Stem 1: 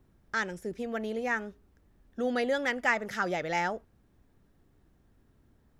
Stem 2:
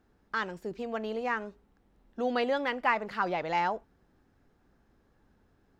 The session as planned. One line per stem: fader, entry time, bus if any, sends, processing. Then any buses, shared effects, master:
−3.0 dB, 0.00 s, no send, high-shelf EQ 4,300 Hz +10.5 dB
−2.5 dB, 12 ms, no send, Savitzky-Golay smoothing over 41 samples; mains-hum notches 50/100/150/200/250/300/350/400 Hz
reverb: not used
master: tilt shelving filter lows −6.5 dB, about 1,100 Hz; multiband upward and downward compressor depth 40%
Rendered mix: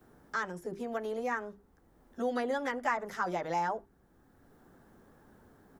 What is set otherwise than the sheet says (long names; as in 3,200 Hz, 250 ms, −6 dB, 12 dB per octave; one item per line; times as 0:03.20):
stem 1 −3.0 dB → −12.5 dB
master: missing tilt shelving filter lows −6.5 dB, about 1,100 Hz